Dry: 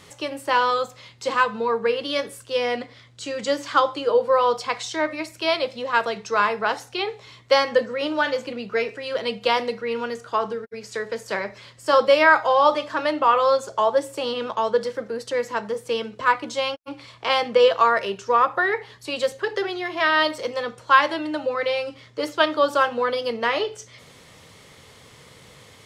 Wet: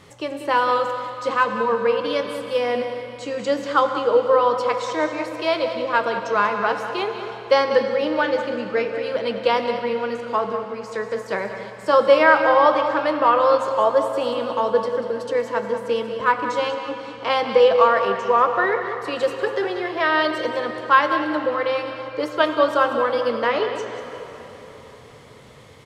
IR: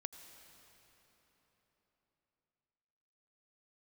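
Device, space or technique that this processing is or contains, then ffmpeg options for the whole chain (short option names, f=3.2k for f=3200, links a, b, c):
cave: -filter_complex "[0:a]highshelf=f=2.4k:g=-8.5,aecho=1:1:190:0.282[a];[1:a]atrim=start_sample=2205[b];[a][b]afir=irnorm=-1:irlink=0,volume=6dB"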